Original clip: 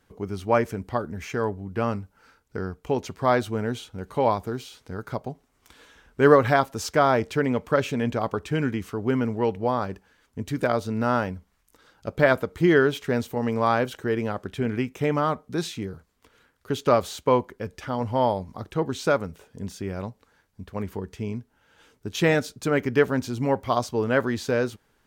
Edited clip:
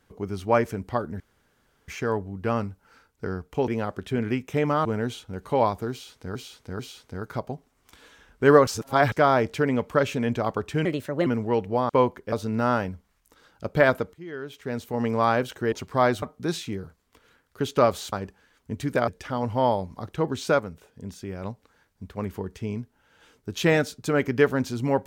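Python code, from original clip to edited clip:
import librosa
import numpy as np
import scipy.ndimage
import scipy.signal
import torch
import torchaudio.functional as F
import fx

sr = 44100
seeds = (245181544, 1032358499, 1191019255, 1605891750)

y = fx.edit(x, sr, fx.insert_room_tone(at_s=1.2, length_s=0.68),
    fx.swap(start_s=3.0, length_s=0.5, other_s=14.15, other_length_s=1.17),
    fx.repeat(start_s=4.56, length_s=0.44, count=3),
    fx.reverse_span(start_s=6.44, length_s=0.45),
    fx.speed_span(start_s=8.62, length_s=0.55, speed=1.33),
    fx.swap(start_s=9.8, length_s=0.95, other_s=17.22, other_length_s=0.43),
    fx.fade_in_from(start_s=12.56, length_s=0.87, curve='qua', floor_db=-23.0),
    fx.clip_gain(start_s=19.17, length_s=0.84, db=-3.5), tone=tone)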